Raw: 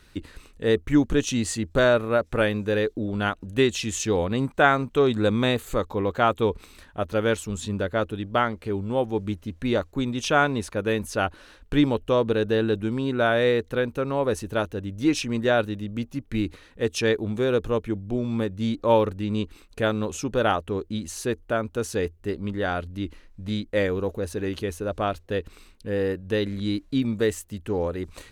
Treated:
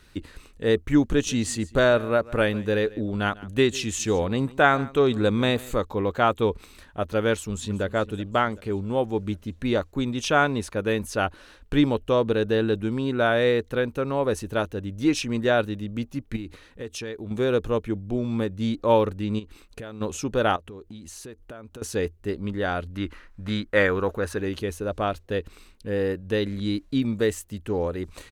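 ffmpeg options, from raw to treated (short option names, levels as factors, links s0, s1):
-filter_complex "[0:a]asettb=1/sr,asplit=3[s0][s1][s2];[s0]atrim=end=1.024[s3];[s1]atrim=start=1.02:end=5.76,asetpts=PTS-STARTPTS,afade=t=in:d=0.004:c=qsin,afade=t=out:st=4.736:d=0.004:c=qsin,aecho=1:1:147:0.0944,atrim=end_sample=209034[s4];[s2]atrim=start=5.756[s5];[s3][s4]acrossfade=d=0.004:c1=hsin:c2=qsin[s6];[s6][s5]acrossfade=d=0.004:c1=qsin:c2=hsin,asplit=2[s7][s8];[s8]afade=t=in:st=7.32:d=0.01,afade=t=out:st=7.84:d=0.01,aecho=0:1:380|760|1140|1520|1900:0.133352|0.0733437|0.040339|0.0221865|0.0122026[s9];[s7][s9]amix=inputs=2:normalize=0,asettb=1/sr,asplit=3[s10][s11][s12];[s10]atrim=end=16.364[s13];[s11]atrim=start=16.36:end=17.31,asetpts=PTS-STARTPTS,afade=t=in:d=0.004:c=qsin,afade=t=out:st=0.946:d=0.004:c=qsin,acompressor=threshold=0.0251:ratio=4:attack=3.2:release=140:knee=1:detection=peak[s14];[s12]atrim=start=17.306[s15];[s13][s14]acrossfade=d=0.004:c1=hsin:c2=qsin[s16];[s16][s15]acrossfade=d=0.004:c1=qsin:c2=hsin,asplit=3[s17][s18][s19];[s17]afade=t=out:st=19.38:d=0.02[s20];[s18]acompressor=threshold=0.0224:ratio=12:attack=3.2:release=140:knee=1:detection=peak,afade=t=in:st=19.38:d=0.02,afade=t=out:st=20:d=0.02[s21];[s19]afade=t=in:st=20:d=0.02[s22];[s20][s21][s22]amix=inputs=3:normalize=0,asettb=1/sr,asplit=3[s23][s24][s25];[s23]atrim=end=20.564[s26];[s24]atrim=start=20.56:end=21.82,asetpts=PTS-STARTPTS,afade=t=in:d=0.004:c=qsin,afade=t=out:st=1.256:d=0.004:c=qsin,acompressor=threshold=0.0126:ratio=6:attack=3.2:release=140:knee=1:detection=peak[s27];[s25]atrim=start=21.816[s28];[s26][s27]acrossfade=d=0.004:c1=hsin:c2=qsin[s29];[s29][s28]acrossfade=d=0.004:c1=qsin:c2=hsin,asettb=1/sr,asplit=3[s30][s31][s32];[s30]atrim=end=22.954[s33];[s31]atrim=start=22.95:end=24.38,asetpts=PTS-STARTPTS,afade=t=in:d=0.004:c=qsin,afade=t=out:st=1.426:d=0.004:c=qsin,equalizer=f=1400:w=1:g=12[s34];[s32]atrim=start=24.376[s35];[s33][s34]acrossfade=d=0.004:c1=hsin:c2=qsin[s36];[s36][s35]acrossfade=d=0.004:c1=qsin:c2=hsin"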